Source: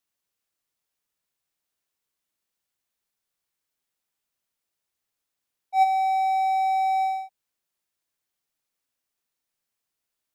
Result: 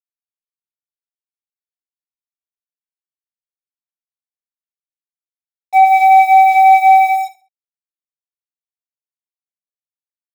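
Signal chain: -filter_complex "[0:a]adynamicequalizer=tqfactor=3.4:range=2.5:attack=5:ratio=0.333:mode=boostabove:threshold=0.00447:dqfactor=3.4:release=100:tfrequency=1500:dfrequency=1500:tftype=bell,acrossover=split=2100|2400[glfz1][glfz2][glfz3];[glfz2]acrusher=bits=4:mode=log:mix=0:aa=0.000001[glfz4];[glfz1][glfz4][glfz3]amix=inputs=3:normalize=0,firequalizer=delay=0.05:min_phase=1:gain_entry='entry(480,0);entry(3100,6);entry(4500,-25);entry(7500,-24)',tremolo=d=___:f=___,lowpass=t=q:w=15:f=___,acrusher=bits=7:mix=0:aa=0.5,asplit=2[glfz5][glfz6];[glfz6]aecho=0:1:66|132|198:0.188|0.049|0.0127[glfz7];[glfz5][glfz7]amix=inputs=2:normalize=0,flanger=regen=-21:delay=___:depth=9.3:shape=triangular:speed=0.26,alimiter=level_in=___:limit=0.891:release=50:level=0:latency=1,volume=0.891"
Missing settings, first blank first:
0.29, 5.5, 7.5k, 2.9, 11.9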